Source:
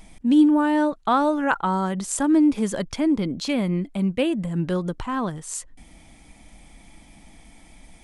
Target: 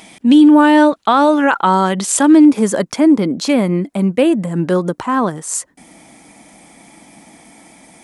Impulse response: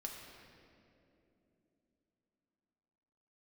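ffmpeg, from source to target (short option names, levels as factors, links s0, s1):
-af "highpass=220,asetnsamples=n=441:p=0,asendcmd='2.45 equalizer g -6.5',equalizer=f=3200:t=o:w=1.2:g=4,alimiter=level_in=4.22:limit=0.891:release=50:level=0:latency=1,volume=0.891"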